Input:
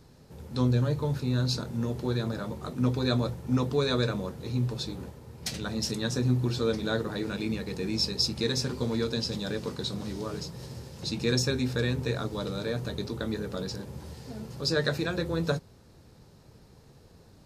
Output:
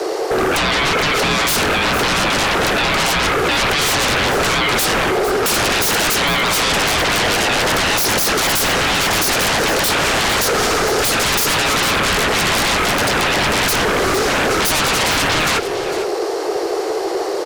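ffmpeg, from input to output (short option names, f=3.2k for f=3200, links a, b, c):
-filter_complex "[0:a]highshelf=f=11k:g=-10,asplit=2[a][b];[b]acompressor=threshold=-35dB:ratio=6,volume=0.5dB[c];[a][c]amix=inputs=2:normalize=0,alimiter=limit=-22dB:level=0:latency=1:release=54,acontrast=43,asoftclip=type=tanh:threshold=-17.5dB,afreqshift=300,aeval=exprs='0.211*sin(PI/2*8.91*val(0)/0.211)':c=same,aecho=1:1:453:0.251"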